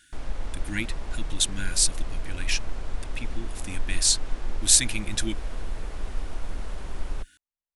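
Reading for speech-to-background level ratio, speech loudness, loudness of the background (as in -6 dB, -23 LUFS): 13.5 dB, -24.5 LUFS, -38.0 LUFS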